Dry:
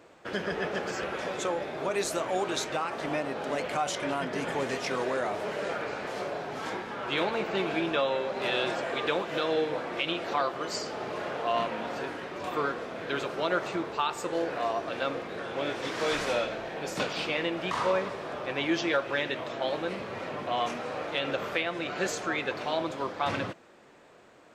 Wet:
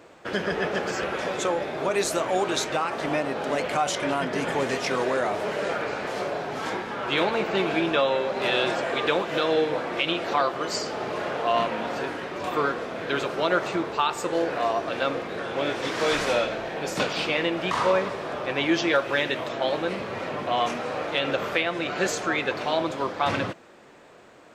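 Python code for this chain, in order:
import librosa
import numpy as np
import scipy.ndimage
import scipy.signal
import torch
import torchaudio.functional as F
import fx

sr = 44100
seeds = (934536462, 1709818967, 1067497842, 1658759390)

y = fx.high_shelf(x, sr, hz=8800.0, db=8.0, at=(18.95, 19.49))
y = F.gain(torch.from_numpy(y), 5.0).numpy()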